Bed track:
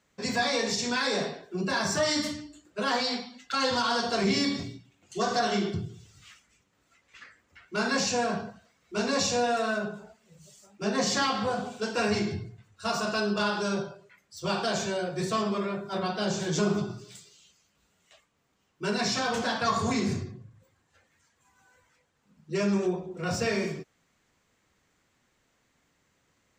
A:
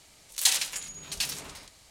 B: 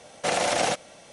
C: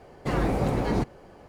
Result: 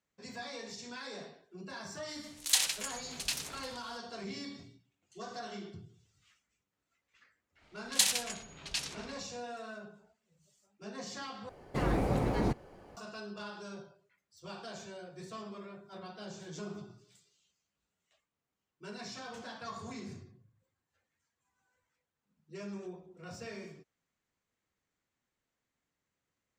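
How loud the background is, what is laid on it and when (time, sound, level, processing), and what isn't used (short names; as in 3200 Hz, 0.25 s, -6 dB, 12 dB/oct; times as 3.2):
bed track -16.5 dB
2.08 add A -3.5 dB + Doppler distortion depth 0.21 ms
7.54 add A -3.5 dB, fades 0.10 s + low-pass opened by the level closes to 2400 Hz, open at -23 dBFS
11.49 replace with C -5 dB
not used: B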